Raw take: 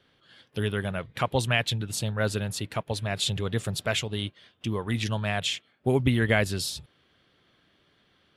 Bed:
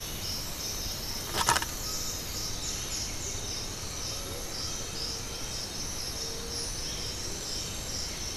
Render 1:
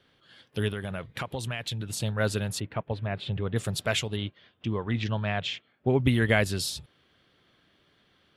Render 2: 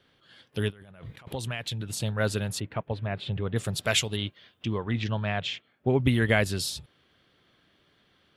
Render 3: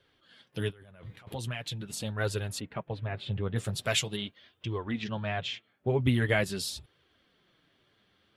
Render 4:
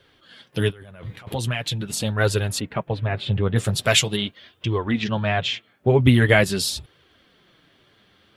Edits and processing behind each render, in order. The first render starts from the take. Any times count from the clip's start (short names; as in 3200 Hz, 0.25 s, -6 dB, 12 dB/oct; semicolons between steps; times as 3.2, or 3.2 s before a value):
0.68–2 compressor, threshold -29 dBFS; 2.6–3.56 air absorption 450 m; 4.16–6.04 air absorption 180 m
0.7–1.33 negative-ratio compressor -47 dBFS; 3.83–4.78 high shelf 3100 Hz +8 dB
flange 0.43 Hz, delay 1.8 ms, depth 8.6 ms, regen -23%
gain +10.5 dB